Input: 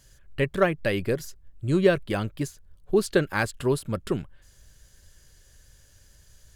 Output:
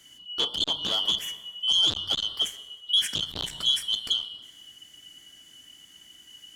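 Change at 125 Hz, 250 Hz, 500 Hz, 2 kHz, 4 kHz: -18.0 dB, -18.0 dB, -20.5 dB, -13.0 dB, +20.0 dB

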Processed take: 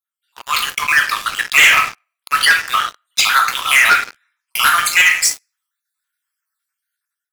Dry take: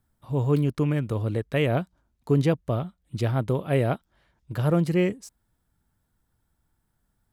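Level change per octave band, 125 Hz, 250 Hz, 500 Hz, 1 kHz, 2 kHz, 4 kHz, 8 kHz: under -20 dB, under -15 dB, -11.0 dB, +19.0 dB, +26.5 dB, +26.5 dB, no reading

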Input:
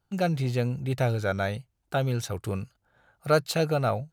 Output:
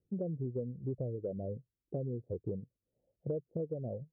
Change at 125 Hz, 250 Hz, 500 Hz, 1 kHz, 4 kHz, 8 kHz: -11.5 dB, -9.0 dB, -11.0 dB, -27.5 dB, under -40 dB, under -40 dB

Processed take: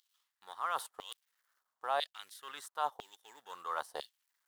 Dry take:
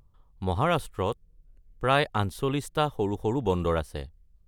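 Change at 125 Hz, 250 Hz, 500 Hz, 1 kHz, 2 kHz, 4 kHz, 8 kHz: under -40 dB, -33.5 dB, -17.0 dB, -8.0 dB, -12.0 dB, -8.0 dB, -5.5 dB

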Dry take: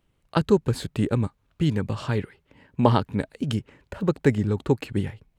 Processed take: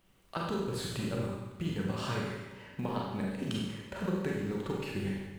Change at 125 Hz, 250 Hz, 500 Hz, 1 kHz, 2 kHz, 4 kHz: -12.0 dB, -9.5 dB, -11.0 dB, -10.0 dB, -5.5 dB, -4.5 dB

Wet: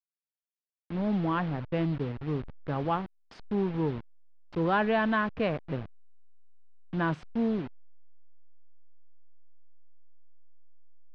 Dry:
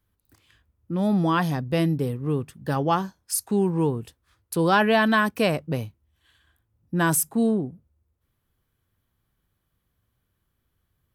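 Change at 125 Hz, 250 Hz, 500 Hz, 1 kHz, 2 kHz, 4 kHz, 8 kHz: -6.5 dB, -6.5 dB, -6.5 dB, -6.5 dB, -7.5 dB, -11.5 dB, under -35 dB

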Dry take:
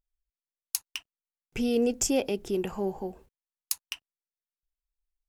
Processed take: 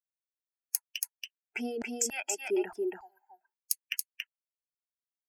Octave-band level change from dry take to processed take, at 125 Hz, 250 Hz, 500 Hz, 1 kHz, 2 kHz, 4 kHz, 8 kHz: under -15 dB, -8.5 dB, -5.5 dB, -4.5 dB, +3.0 dB, -3.0 dB, 0.0 dB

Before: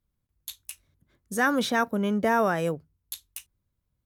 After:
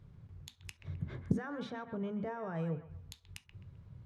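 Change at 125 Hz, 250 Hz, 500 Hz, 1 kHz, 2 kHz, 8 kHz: -1.5 dB, -10.5 dB, -14.5 dB, -18.5 dB, -20.5 dB, under -15 dB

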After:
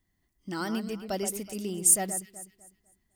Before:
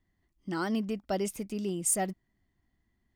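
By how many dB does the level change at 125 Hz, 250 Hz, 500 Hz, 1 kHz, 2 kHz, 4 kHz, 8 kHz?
-1.0 dB, -1.0 dB, -0.5 dB, -0.5 dB, +0.5 dB, +3.5 dB, +8.0 dB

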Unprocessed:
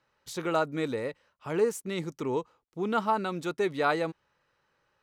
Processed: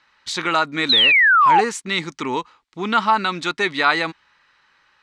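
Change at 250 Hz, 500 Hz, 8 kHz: +5.5 dB, +2.0 dB, +10.0 dB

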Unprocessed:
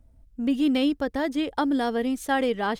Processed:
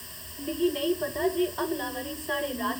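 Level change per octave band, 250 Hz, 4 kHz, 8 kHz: -7.5 dB, -1.0 dB, no reading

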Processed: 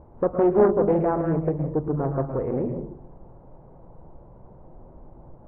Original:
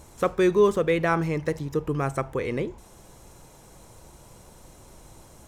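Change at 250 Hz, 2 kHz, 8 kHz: +3.0 dB, -11.5 dB, under -35 dB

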